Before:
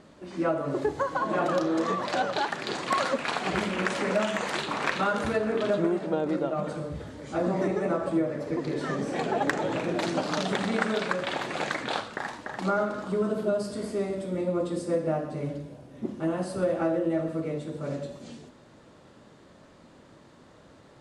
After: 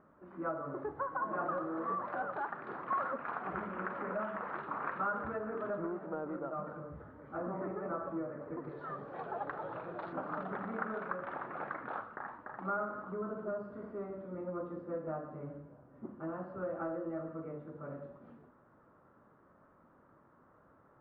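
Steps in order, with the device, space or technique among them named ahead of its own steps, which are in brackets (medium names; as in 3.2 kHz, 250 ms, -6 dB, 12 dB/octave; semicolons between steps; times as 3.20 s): 8.69–10.13 s: graphic EQ 250/2000/4000 Hz -10/-5/+12 dB; overdriven synthesiser ladder filter (saturation -16.5 dBFS, distortion -22 dB; four-pole ladder low-pass 1.5 kHz, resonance 55%); trim -2.5 dB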